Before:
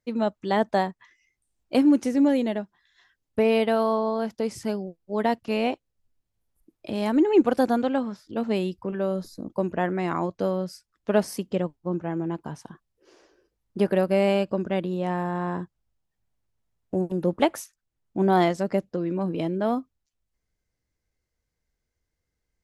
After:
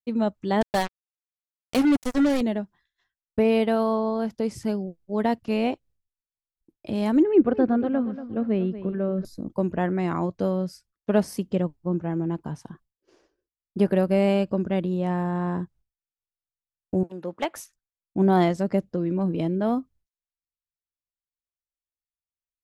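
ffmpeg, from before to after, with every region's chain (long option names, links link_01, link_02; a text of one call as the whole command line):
ffmpeg -i in.wav -filter_complex "[0:a]asettb=1/sr,asplit=3[link_01][link_02][link_03];[link_01]atrim=end=0.614[link_04];[link_02]atrim=start=0.61:end=2.41,asetpts=PTS-STARTPTS,afade=type=in:duration=0.004:curve=qsin,afade=type=out:start_time=1.796:duration=0.004:curve=qsin,tiltshelf=frequency=870:gain=-4,acrusher=bits=3:mix=0:aa=0.5[link_05];[link_03]atrim=start=2.406[link_06];[link_04][link_05]acrossfade=duration=0.004:curve1=hsin:curve2=qsin[link_07];[link_07][link_06]acrossfade=duration=0.004:curve1=qsin:curve2=hsin,asettb=1/sr,asplit=3[link_08][link_09][link_10];[link_08]atrim=end=7.234[link_11];[link_09]atrim=start=7.23:end=9.25,asetpts=PTS-STARTPTS,afade=type=in:duration=0.004:curve=qsin,afade=type=out:start_time=2.016:duration=0.004:curve=qsin,lowpass=1900,equalizer=frequency=880:width=4:gain=-10,aecho=1:1:235|470|705:0.224|0.0739|0.0244,atrim=end_sample=89082[link_12];[link_10]atrim=start=9.246[link_13];[link_11][link_12]acrossfade=duration=0.004:curve1=hsin:curve2=qsin[link_14];[link_14][link_13]acrossfade=duration=0.004:curve1=qsin:curve2=hsin,asettb=1/sr,asplit=3[link_15][link_16][link_17];[link_15]atrim=end=17.034[link_18];[link_16]atrim=start=17.03:end=17.56,asetpts=PTS-STARTPTS,afade=type=in:duration=0.004:curve=qsin,afade=type=out:start_time=0.526:duration=0.004:curve=qsin,bandpass=frequency=2000:width_type=q:width=0.51,asoftclip=type=hard:threshold=-15dB[link_19];[link_17]atrim=start=17.556[link_20];[link_18][link_19]acrossfade=duration=0.004:curve1=hsin:curve2=qsin[link_21];[link_21][link_20]acrossfade=duration=0.004:curve1=qsin:curve2=hsin,agate=range=-33dB:threshold=-51dB:ratio=3:detection=peak,lowshelf=frequency=250:gain=9.5,volume=-2.5dB" out.wav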